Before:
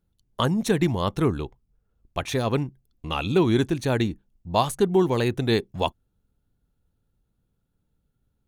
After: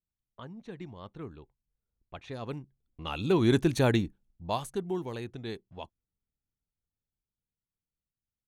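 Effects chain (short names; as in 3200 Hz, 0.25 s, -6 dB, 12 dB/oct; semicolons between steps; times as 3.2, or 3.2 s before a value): Doppler pass-by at 3.73, 6 m/s, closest 1.6 m; low-pass opened by the level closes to 1900 Hz, open at -31.5 dBFS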